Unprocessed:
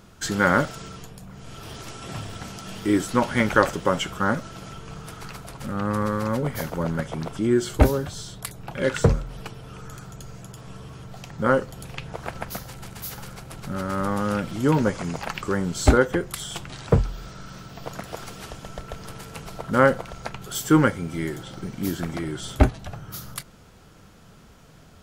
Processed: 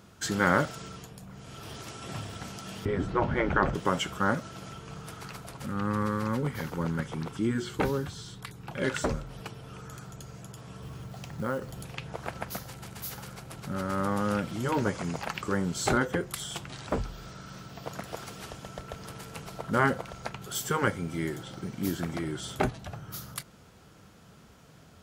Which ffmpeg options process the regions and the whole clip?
ffmpeg -i in.wav -filter_complex "[0:a]asettb=1/sr,asplit=3[link_01][link_02][link_03];[link_01]atrim=end=2.854[link_04];[link_02]atrim=start=2.85:end=3.75,asetpts=PTS-STARTPTS,afade=type=in:duration=0.004:curve=qsin,afade=type=out:start_time=0.896:duration=0.004:curve=qsin,lowpass=frequency=3400:poles=1,aemphasis=mode=reproduction:type=riaa[link_05];[link_03]atrim=start=3.746[link_06];[link_04][link_05]acrossfade=duration=0.004:curve1=hsin:curve2=qsin[link_07];[link_07][link_06]acrossfade=duration=0.004:curve1=qsin:curve2=hsin,asettb=1/sr,asplit=3[link_08][link_09][link_10];[link_08]atrim=end=5.664[link_11];[link_09]atrim=start=5.66:end=8.7,asetpts=PTS-STARTPTS,afade=type=in:duration=0.004:curve=qsin,afade=type=out:start_time=3.036:duration=0.004:curve=qsin,acrossover=split=4500[link_12][link_13];[link_13]acompressor=threshold=-45dB:ratio=4:attack=1:release=60[link_14];[link_12][link_14]amix=inputs=2:normalize=0,equalizer=frequency=630:width_type=o:width=0.34:gain=-12.5[link_15];[link_10]atrim=start=8.696[link_16];[link_11][link_15]acrossfade=duration=0.004:curve1=hsin:curve2=qsin[link_17];[link_17][link_16]acrossfade=duration=0.004:curve1=qsin:curve2=hsin,asettb=1/sr,asplit=3[link_18][link_19][link_20];[link_18]atrim=end=10.824[link_21];[link_19]atrim=start=10.82:end=11.83,asetpts=PTS-STARTPTS,afade=type=in:duration=0.004:curve=qsin,afade=type=out:start_time=1.006:duration=0.004:curve=qsin,lowshelf=frequency=170:gain=5,acompressor=threshold=-27dB:ratio=2.5:attack=3.2:release=140:knee=1:detection=peak,acrusher=bits=6:mode=log:mix=0:aa=0.000001[link_22];[link_20]atrim=start=11.826[link_23];[link_21][link_22]acrossfade=duration=0.004:curve1=hsin:curve2=qsin[link_24];[link_24][link_23]acrossfade=duration=0.004:curve1=qsin:curve2=hsin,highpass=61,afftfilt=real='re*lt(hypot(re,im),0.794)':imag='im*lt(hypot(re,im),0.794)':win_size=1024:overlap=0.75,volume=-3.5dB" out.wav

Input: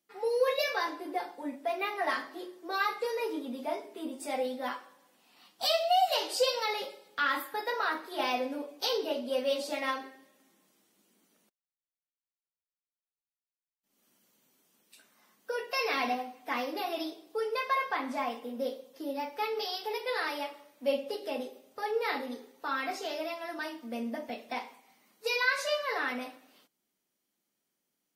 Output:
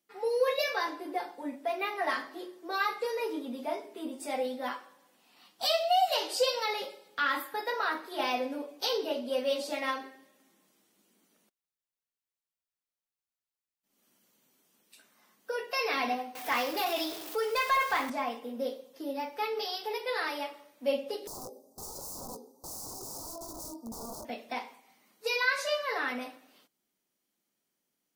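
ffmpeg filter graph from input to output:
ffmpeg -i in.wav -filter_complex "[0:a]asettb=1/sr,asplit=3[link_01][link_02][link_03];[link_01]atrim=end=16.354[link_04];[link_02]atrim=start=16.35:end=18.1,asetpts=PTS-STARTPTS,afade=type=in:duration=0.004:curve=qsin,afade=type=out:start_time=1.746:duration=0.004:curve=qsin,aeval=exprs='val(0)+0.5*0.00794*sgn(val(0))':channel_layout=same,asplit=2[link_05][link_06];[link_06]highpass=frequency=720:poles=1,volume=10dB,asoftclip=type=tanh:threshold=-17dB[link_07];[link_05][link_07]amix=inputs=2:normalize=0,lowpass=frequency=2100:poles=1,volume=-6dB,aemphasis=mode=production:type=75fm[link_08];[link_03]atrim=start=18.096[link_09];[link_04][link_08]acrossfade=duration=0.004:curve1=hsin:curve2=qsin[link_10];[link_10][link_09]acrossfade=duration=0.004:curve1=qsin:curve2=hsin,asettb=1/sr,asplit=3[link_11][link_12][link_13];[link_11]atrim=end=21.274[link_14];[link_12]atrim=start=21.27:end=24.25,asetpts=PTS-STARTPTS,afade=type=in:duration=0.004:curve=qsin,afade=type=out:start_time=2.976:duration=0.004:curve=qsin,aeval=exprs='(mod(59.6*val(0)+1,2)-1)/59.6':channel_layout=same,asuperstop=centerf=2300:order=8:qfactor=0.58,asplit=2[link_15][link_16];[link_16]adelay=18,volume=-11dB[link_17];[link_15][link_17]amix=inputs=2:normalize=0,atrim=end_sample=131418[link_18];[link_13]atrim=start=24.246[link_19];[link_14][link_18]acrossfade=duration=0.004:curve1=hsin:curve2=qsin[link_20];[link_20][link_19]acrossfade=duration=0.004:curve1=qsin:curve2=hsin" out.wav

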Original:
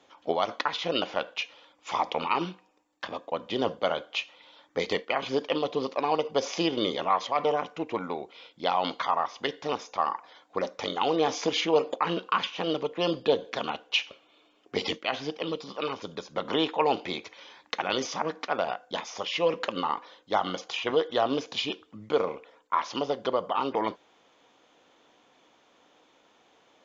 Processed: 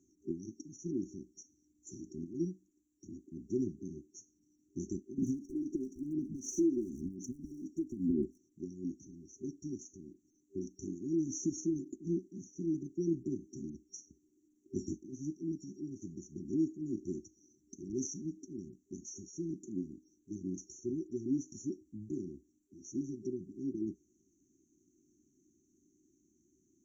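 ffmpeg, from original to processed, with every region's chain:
ffmpeg -i in.wav -filter_complex "[0:a]asettb=1/sr,asplit=3[link_01][link_02][link_03];[link_01]atrim=end=5.184[link_04];[link_02]atrim=start=5.18:end=8.38,asetpts=PTS-STARTPTS,afade=type=in:duration=0.004:curve=qsin,afade=type=out:start_time=3.196:duration=0.004:curve=qsin,equalizer=frequency=240:width=2.4:gain=11.5,acompressor=threshold=-29dB:ratio=16:attack=3.2:release=140:knee=1:detection=peak,aphaser=in_gain=1:out_gain=1:delay=3.1:decay=0.67:speed=1:type=sinusoidal[link_05];[link_03]atrim=start=8.376[link_06];[link_04][link_05]acrossfade=duration=0.004:curve1=hsin:curve2=qsin[link_07];[link_07][link_06]acrossfade=duration=0.004:curve1=qsin:curve2=hsin,equalizer=frequency=64:width=2.7:gain=11.5,afftfilt=real='re*(1-between(b*sr/4096,390,5600))':imag='im*(1-between(b*sr/4096,390,5600))':win_size=4096:overlap=0.75,volume=-1.5dB" out.wav

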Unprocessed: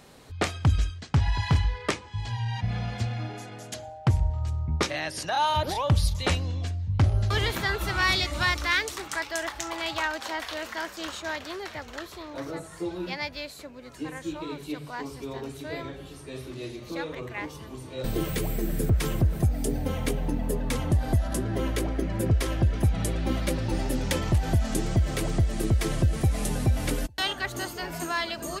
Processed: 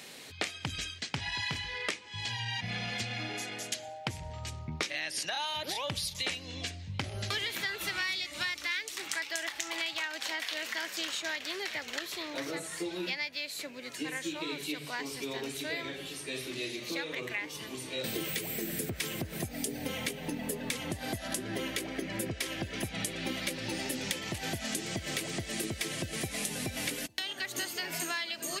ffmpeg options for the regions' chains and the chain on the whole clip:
ffmpeg -i in.wav -filter_complex "[0:a]asettb=1/sr,asplit=3[link_01][link_02][link_03];[link_01]atrim=end=27.064[link_04];[link_02]atrim=start=27.06:end=27.58,asetpts=PTS-STARTPTS,afade=type=in:duration=0.004:curve=qsin,afade=type=out:start_time=0.516:duration=0.004:curve=qsin,bandreject=frequency=80.34:width_type=h:width=4,bandreject=frequency=160.68:width_type=h:width=4,bandreject=frequency=241.02:width_type=h:width=4,bandreject=frequency=321.36:width_type=h:width=4,bandreject=frequency=401.7:width_type=h:width=4,bandreject=frequency=482.04:width_type=h:width=4,bandreject=frequency=562.38:width_type=h:width=4,bandreject=frequency=642.72:width_type=h:width=4,bandreject=frequency=723.06:width_type=h:width=4,bandreject=frequency=803.4:width_type=h:width=4,bandreject=frequency=883.74:width_type=h:width=4,bandreject=frequency=964.08:width_type=h:width=4,bandreject=frequency=1044.42:width_type=h:width=4,bandreject=frequency=1124.76:width_type=h:width=4,bandreject=frequency=1205.1:width_type=h:width=4,bandreject=frequency=1285.44:width_type=h:width=4,bandreject=frequency=1365.78:width_type=h:width=4,acrossover=split=810|4700[link_05][link_06][link_07];[link_05]acompressor=threshold=-38dB:ratio=4[link_08];[link_06]acompressor=threshold=-36dB:ratio=4[link_09];[link_07]acompressor=threshold=-45dB:ratio=4[link_10];[link_08][link_09][link_10]amix=inputs=3:normalize=0[link_11];[link_03]atrim=start=27.576[link_12];[link_04][link_11]acrossfade=duration=0.004:curve1=hsin:curve2=qsin[link_13];[link_13][link_12]acrossfade=duration=0.004:curve1=qsin:curve2=hsin,highpass=190,highshelf=frequency=1600:width_type=q:width=1.5:gain=8,acompressor=threshold=-32dB:ratio=6" out.wav

